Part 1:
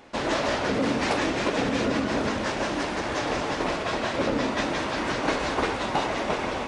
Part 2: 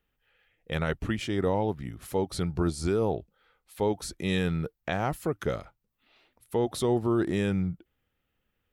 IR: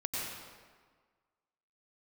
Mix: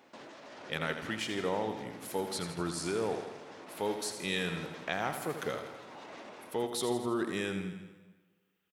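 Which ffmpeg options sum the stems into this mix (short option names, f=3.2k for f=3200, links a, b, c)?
-filter_complex "[0:a]alimiter=level_in=4.5dB:limit=-24dB:level=0:latency=1:release=132,volume=-4.5dB,tremolo=f=1.3:d=0.34,volume=-10dB[a];[1:a]tiltshelf=f=940:g=-4.5,volume=-5dB,asplit=3[b][c][d];[c]volume=-17dB[e];[d]volume=-8dB[f];[2:a]atrim=start_sample=2205[g];[e][g]afir=irnorm=-1:irlink=0[h];[f]aecho=0:1:82|164|246|328|410|492|574|656|738:1|0.59|0.348|0.205|0.121|0.0715|0.0422|0.0249|0.0147[i];[a][b][h][i]amix=inputs=4:normalize=0,highpass=160"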